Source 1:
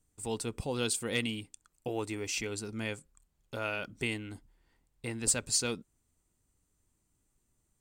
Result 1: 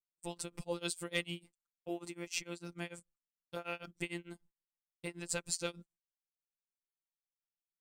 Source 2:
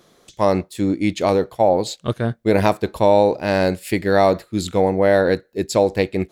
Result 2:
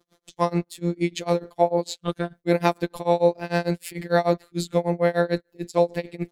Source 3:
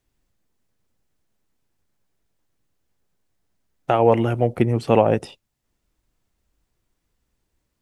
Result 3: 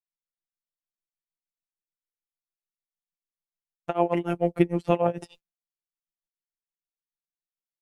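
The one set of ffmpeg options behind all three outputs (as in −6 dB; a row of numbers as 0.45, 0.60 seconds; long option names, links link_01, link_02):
-af "afftfilt=real='hypot(re,im)*cos(PI*b)':imag='0':win_size=1024:overlap=0.75,tremolo=f=6.7:d=0.96,agate=range=-33dB:threshold=-55dB:ratio=3:detection=peak,volume=2dB"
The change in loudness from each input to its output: −7.0, −6.0, −6.5 LU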